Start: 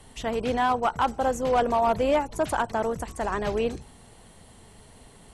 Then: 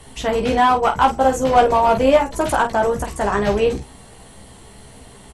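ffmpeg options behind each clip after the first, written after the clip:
ffmpeg -i in.wav -af "aecho=1:1:15|49:0.708|0.376,volume=6.5dB" out.wav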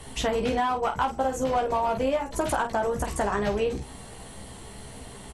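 ffmpeg -i in.wav -af "acompressor=threshold=-23dB:ratio=6" out.wav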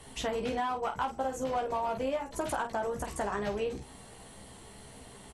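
ffmpeg -i in.wav -af "lowshelf=frequency=99:gain=-5.5,volume=-6.5dB" out.wav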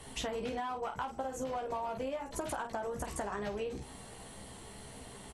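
ffmpeg -i in.wav -af "acompressor=threshold=-35dB:ratio=6,volume=1dB" out.wav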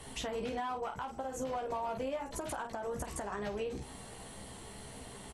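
ffmpeg -i in.wav -af "alimiter=level_in=5dB:limit=-24dB:level=0:latency=1:release=172,volume=-5dB,volume=1dB" out.wav

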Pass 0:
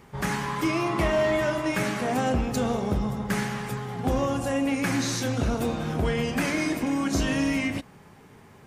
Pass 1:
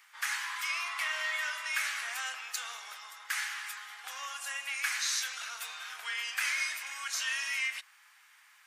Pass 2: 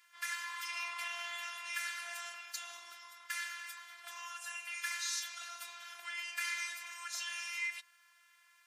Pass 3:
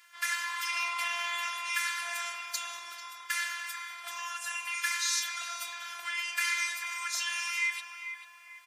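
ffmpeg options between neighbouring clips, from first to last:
ffmpeg -i in.wav -af "highpass=frequency=1400:width=0.5412,highpass=frequency=1400:width=1.3066" out.wav
ffmpeg -i in.wav -af "afftfilt=real='hypot(re,im)*cos(PI*b)':imag='0':win_size=512:overlap=0.75,volume=-2.5dB" out.wav
ffmpeg -i in.wav -filter_complex "[0:a]asplit=2[link_01][link_02];[link_02]adelay=442,lowpass=frequency=1700:poles=1,volume=-6dB,asplit=2[link_03][link_04];[link_04]adelay=442,lowpass=frequency=1700:poles=1,volume=0.51,asplit=2[link_05][link_06];[link_06]adelay=442,lowpass=frequency=1700:poles=1,volume=0.51,asplit=2[link_07][link_08];[link_08]adelay=442,lowpass=frequency=1700:poles=1,volume=0.51,asplit=2[link_09][link_10];[link_10]adelay=442,lowpass=frequency=1700:poles=1,volume=0.51,asplit=2[link_11][link_12];[link_12]adelay=442,lowpass=frequency=1700:poles=1,volume=0.51[link_13];[link_01][link_03][link_05][link_07][link_09][link_11][link_13]amix=inputs=7:normalize=0,volume=7.5dB" out.wav

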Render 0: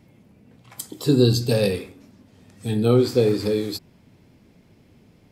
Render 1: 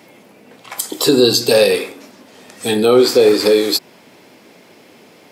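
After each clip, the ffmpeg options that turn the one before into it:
ffmpeg -i in.wav -filter_complex "[0:a]highpass=440,asplit=2[link_01][link_02];[link_02]acompressor=threshold=-31dB:ratio=6,volume=-0.5dB[link_03];[link_01][link_03]amix=inputs=2:normalize=0,alimiter=level_in=12.5dB:limit=-1dB:release=50:level=0:latency=1,volume=-1dB" out.wav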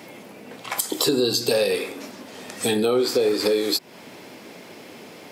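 ffmpeg -i in.wav -af "acompressor=threshold=-25dB:ratio=3,volume=3dB" out.wav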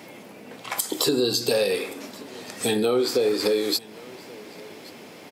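ffmpeg -i in.wav -af "aecho=1:1:1127:0.075,volume=-1.5dB" out.wav

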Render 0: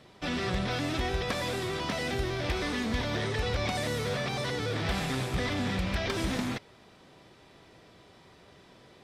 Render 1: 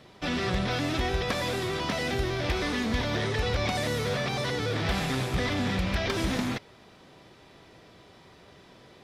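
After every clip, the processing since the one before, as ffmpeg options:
ffmpeg -i in.wav -af "equalizer=frequency=8300:width=5.7:gain=-4,volume=2.5dB" out.wav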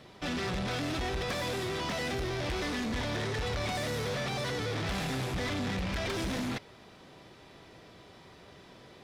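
ffmpeg -i in.wav -af "asoftclip=type=tanh:threshold=-29.5dB" out.wav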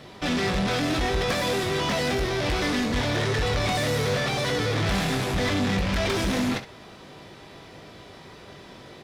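ffmpeg -i in.wav -af "aecho=1:1:20|67:0.376|0.211,volume=7.5dB" out.wav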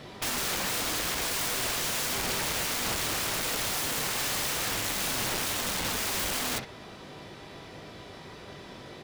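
ffmpeg -i in.wav -af "aeval=exprs='(mod(20*val(0)+1,2)-1)/20':channel_layout=same" out.wav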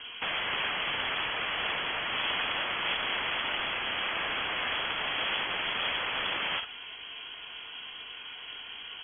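ffmpeg -i in.wav -af "lowpass=frequency=2900:width_type=q:width=0.5098,lowpass=frequency=2900:width_type=q:width=0.6013,lowpass=frequency=2900:width_type=q:width=0.9,lowpass=frequency=2900:width_type=q:width=2.563,afreqshift=-3400,volume=2.5dB" out.wav

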